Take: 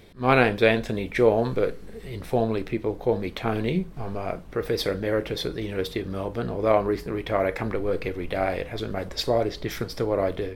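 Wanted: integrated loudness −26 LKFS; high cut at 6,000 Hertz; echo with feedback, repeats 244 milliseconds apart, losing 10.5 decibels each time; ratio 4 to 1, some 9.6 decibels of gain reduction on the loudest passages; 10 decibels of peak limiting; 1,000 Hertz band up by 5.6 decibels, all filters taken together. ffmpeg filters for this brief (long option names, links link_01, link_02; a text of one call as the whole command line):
ffmpeg -i in.wav -af "lowpass=6000,equalizer=frequency=1000:width_type=o:gain=8,acompressor=threshold=-22dB:ratio=4,alimiter=limit=-19.5dB:level=0:latency=1,aecho=1:1:244|488|732:0.299|0.0896|0.0269,volume=5dB" out.wav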